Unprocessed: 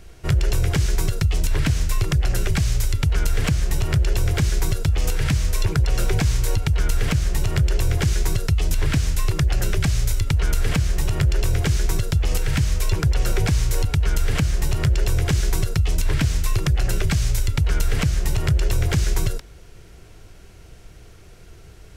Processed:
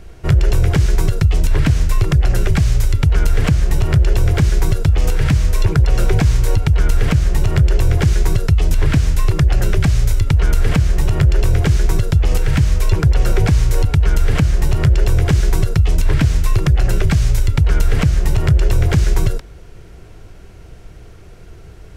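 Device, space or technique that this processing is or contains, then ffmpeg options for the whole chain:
behind a face mask: -af "highshelf=frequency=2300:gain=-8,volume=6.5dB"

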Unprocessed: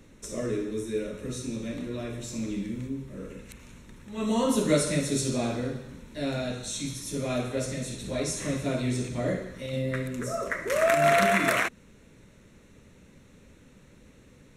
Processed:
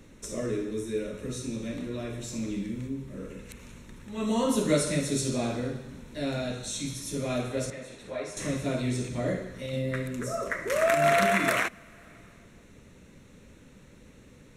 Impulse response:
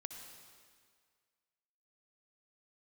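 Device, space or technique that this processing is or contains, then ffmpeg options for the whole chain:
compressed reverb return: -filter_complex "[0:a]asettb=1/sr,asplit=3[link_01][link_02][link_03];[link_01]atrim=end=7.704[link_04];[link_02]atrim=start=7.7:end=8.37,asetpts=PTS-STARTPTS,afade=type=in:duration=0.004:curve=qsin,afade=type=out:start_time=0.666:duration=0.004:curve=qsin,acrossover=split=430 2600:gain=0.2 1 0.2[link_05][link_06][link_07];[link_05][link_06][link_07]amix=inputs=3:normalize=0[link_08];[link_03]atrim=start=8.366[link_09];[link_04][link_08]acrossfade=duration=0.004:curve1=hsin:curve2=qsin[link_10];[link_10][link_09]acrossfade=duration=0.004:curve1=qsin:curve2=hsin,asplit=2[link_11][link_12];[1:a]atrim=start_sample=2205[link_13];[link_12][link_13]afir=irnorm=-1:irlink=0,acompressor=threshold=-44dB:ratio=6,volume=-3.5dB[link_14];[link_11][link_14]amix=inputs=2:normalize=0,volume=-1.5dB"

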